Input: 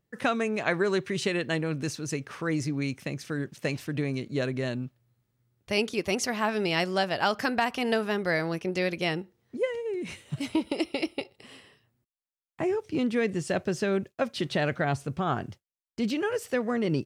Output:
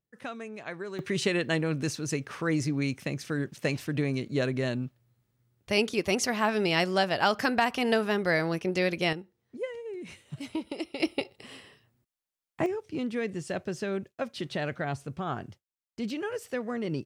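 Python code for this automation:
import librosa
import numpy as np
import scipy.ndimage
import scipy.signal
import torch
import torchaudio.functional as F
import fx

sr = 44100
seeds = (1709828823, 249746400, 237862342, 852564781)

y = fx.gain(x, sr, db=fx.steps((0.0, -12.0), (0.99, 1.0), (9.13, -6.5), (11.0, 2.5), (12.66, -5.0)))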